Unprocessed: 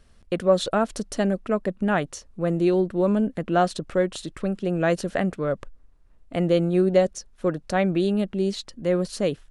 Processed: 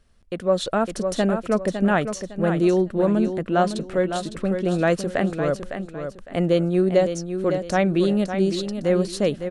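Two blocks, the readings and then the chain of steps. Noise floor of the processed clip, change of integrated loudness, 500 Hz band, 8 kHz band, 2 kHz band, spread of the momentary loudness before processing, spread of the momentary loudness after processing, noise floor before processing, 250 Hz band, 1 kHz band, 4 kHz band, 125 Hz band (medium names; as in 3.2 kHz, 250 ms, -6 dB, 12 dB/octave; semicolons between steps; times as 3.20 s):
-43 dBFS, +2.0 dB, +2.0 dB, +2.0 dB, +2.5 dB, 8 LU, 7 LU, -54 dBFS, +2.0 dB, +1.5 dB, +2.0 dB, +2.0 dB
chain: on a send: feedback delay 557 ms, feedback 29%, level -8.5 dB; on the sum: level rider gain up to 8.5 dB; trim -5 dB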